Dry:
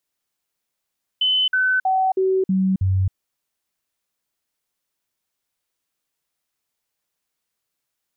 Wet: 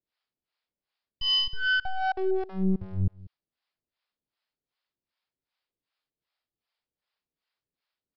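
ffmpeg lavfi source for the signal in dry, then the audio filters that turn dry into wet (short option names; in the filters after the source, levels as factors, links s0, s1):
-f lavfi -i "aevalsrc='0.168*clip(min(mod(t,0.32),0.27-mod(t,0.32))/0.005,0,1)*sin(2*PI*3030*pow(2,-floor(t/0.32)/1)*mod(t,0.32))':d=1.92:s=44100"
-filter_complex "[0:a]aresample=11025,aeval=exprs='clip(val(0),-1,0.0224)':c=same,aresample=44100,acrossover=split=540[s0][s1];[s0]aeval=exprs='val(0)*(1-1/2+1/2*cos(2*PI*2.6*n/s))':c=same[s2];[s1]aeval=exprs='val(0)*(1-1/2-1/2*cos(2*PI*2.6*n/s))':c=same[s3];[s2][s3]amix=inputs=2:normalize=0,aecho=1:1:191:0.0944"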